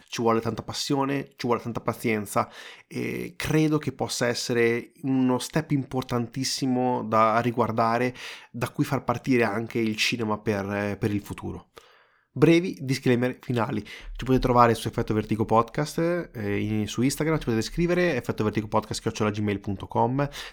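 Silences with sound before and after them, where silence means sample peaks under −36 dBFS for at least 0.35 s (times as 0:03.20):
0:11.78–0:12.36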